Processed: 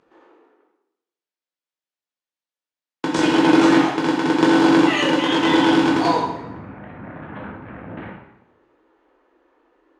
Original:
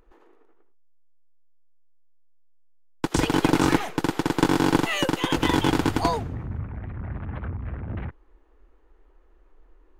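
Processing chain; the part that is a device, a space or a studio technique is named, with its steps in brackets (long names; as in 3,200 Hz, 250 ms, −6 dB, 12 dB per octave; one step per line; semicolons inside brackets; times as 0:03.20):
supermarket ceiling speaker (band-pass filter 230–5,600 Hz; convolution reverb RT60 0.85 s, pre-delay 10 ms, DRR −3 dB)
level +1.5 dB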